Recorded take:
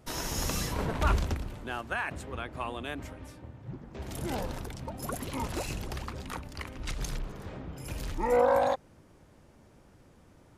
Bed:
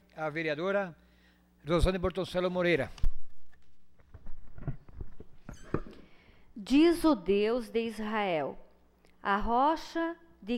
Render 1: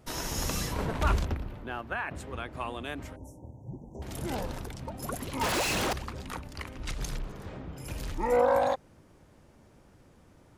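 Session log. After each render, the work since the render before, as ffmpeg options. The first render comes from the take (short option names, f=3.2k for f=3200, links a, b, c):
-filter_complex "[0:a]asettb=1/sr,asplit=3[a][b][c];[a]atrim=end=1.254[d];[b]atrim=start=1.25:end=2.15,asetpts=PTS-STARTPTS,afade=t=in:d=0.004:c=qsin,afade=t=out:st=0.896:d=0.004:c=qsin,equalizer=f=8k:t=o:w=1.5:g=-14.5[e];[c]atrim=start=2.146[f];[d][e]acrossfade=d=0.004:c1=hsin:c2=qsin[g];[g][f]acrossfade=d=0.004:c1=qsin:c2=hsin,asettb=1/sr,asplit=3[h][i][j];[h]atrim=end=3.164[k];[i]atrim=start=3.16:end=4.02,asetpts=PTS-STARTPTS,afade=t=in:d=0.004:c=qsin,afade=t=out:st=0.856:d=0.004:c=qsin,asuperstop=centerf=2400:order=20:qfactor=0.5[l];[j]atrim=start=4.016[m];[k][l]acrossfade=d=0.004:c1=hsin:c2=qsin[n];[n][m]acrossfade=d=0.004:c1=qsin:c2=hsin,asettb=1/sr,asplit=3[o][p][q];[o]atrim=end=5.414[r];[p]atrim=start=5.41:end=5.93,asetpts=PTS-STARTPTS,afade=t=in:d=0.004:c=qsin,afade=t=out:st=0.516:d=0.004:c=qsin,asplit=2[s][t];[t]highpass=f=720:p=1,volume=36dB,asoftclip=type=tanh:threshold=-21.5dB[u];[s][u]amix=inputs=2:normalize=0,lowpass=f=5.5k:p=1,volume=-6dB[v];[q]atrim=start=5.926[w];[r][v]acrossfade=d=0.004:c1=hsin:c2=qsin[x];[x][w]acrossfade=d=0.004:c1=qsin:c2=hsin"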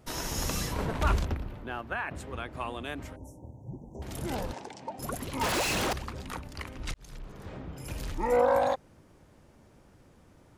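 -filter_complex "[0:a]asettb=1/sr,asplit=3[a][b][c];[a]atrim=end=4.534[d];[b]atrim=start=4.53:end=4.99,asetpts=PTS-STARTPTS,afade=t=in:d=0.004:c=qsin,afade=t=out:st=0.456:d=0.004:c=qsin,highpass=270,equalizer=f=840:t=q:w=4:g=8,equalizer=f=1.3k:t=q:w=4:g=-8,equalizer=f=3.6k:t=q:w=4:g=-3,lowpass=f=7.8k:w=0.5412,lowpass=f=7.8k:w=1.3066[e];[c]atrim=start=4.986[f];[d][e]acrossfade=d=0.004:c1=hsin:c2=qsin[g];[g][f]acrossfade=d=0.004:c1=qsin:c2=hsin,asplit=2[h][i];[h]atrim=end=6.94,asetpts=PTS-STARTPTS,afade=t=out:st=6.936:d=0.004:c=hsin[j];[i]atrim=start=6.94,asetpts=PTS-STARTPTS,afade=t=in:d=0.61[k];[j][k]concat=n=2:v=0:a=1"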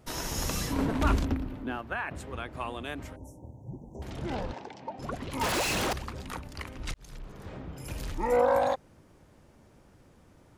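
-filter_complex "[0:a]asettb=1/sr,asplit=3[a][b][c];[a]atrim=end=0.694[d];[b]atrim=start=0.69:end=1.77,asetpts=PTS-STARTPTS,afade=t=in:d=0.004:c=qsin,afade=t=out:st=1.076:d=0.004:c=qsin,equalizer=f=270:w=4.1:g=14.5[e];[c]atrim=start=1.766[f];[d][e]acrossfade=d=0.004:c1=hsin:c2=qsin[g];[g][f]acrossfade=d=0.004:c1=qsin:c2=hsin,asettb=1/sr,asplit=3[h][i][j];[h]atrim=end=4.104[k];[i]atrim=start=4.1:end=5.31,asetpts=PTS-STARTPTS,afade=t=in:d=0.004:c=qsin,afade=t=out:st=1.206:d=0.004:c=qsin,lowpass=4.2k[l];[j]atrim=start=5.306[m];[k][l]acrossfade=d=0.004:c1=hsin:c2=qsin[n];[n][m]acrossfade=d=0.004:c1=qsin:c2=hsin"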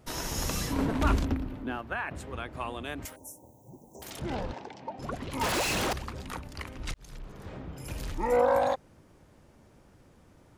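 -filter_complex "[0:a]asettb=1/sr,asplit=3[a][b][c];[a]atrim=end=3.054[d];[b]atrim=start=3.05:end=4.2,asetpts=PTS-STARTPTS,afade=t=in:d=0.004:c=qsin,afade=t=out:st=1.146:d=0.004:c=qsin,aemphasis=mode=production:type=riaa[e];[c]atrim=start=4.196[f];[d][e]acrossfade=d=0.004:c1=hsin:c2=qsin[g];[g][f]acrossfade=d=0.004:c1=qsin:c2=hsin"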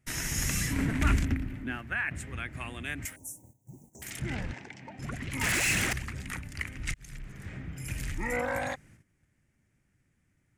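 -af "agate=range=-15dB:threshold=-53dB:ratio=16:detection=peak,equalizer=f=125:t=o:w=1:g=5,equalizer=f=500:t=o:w=1:g=-9,equalizer=f=1k:t=o:w=1:g=-10,equalizer=f=2k:t=o:w=1:g=12,equalizer=f=4k:t=o:w=1:g=-7,equalizer=f=8k:t=o:w=1:g=7"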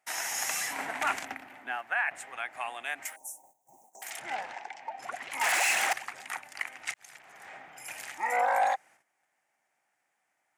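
-af "highpass=f=770:t=q:w=4.9"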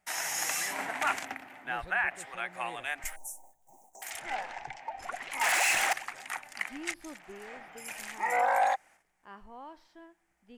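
-filter_complex "[1:a]volume=-20.5dB[a];[0:a][a]amix=inputs=2:normalize=0"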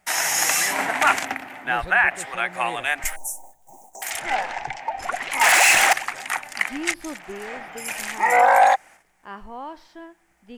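-af "volume=11.5dB"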